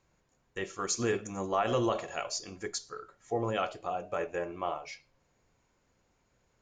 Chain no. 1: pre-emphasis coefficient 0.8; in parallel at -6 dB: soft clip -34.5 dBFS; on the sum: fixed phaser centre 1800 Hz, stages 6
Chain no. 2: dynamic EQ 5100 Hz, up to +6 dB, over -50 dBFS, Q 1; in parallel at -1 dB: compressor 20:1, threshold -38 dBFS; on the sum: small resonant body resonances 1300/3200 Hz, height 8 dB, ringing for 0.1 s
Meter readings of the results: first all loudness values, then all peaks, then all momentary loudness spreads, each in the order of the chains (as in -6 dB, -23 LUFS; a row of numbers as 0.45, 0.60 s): -47.0, -31.0 LUFS; -29.0, -13.0 dBFS; 11, 11 LU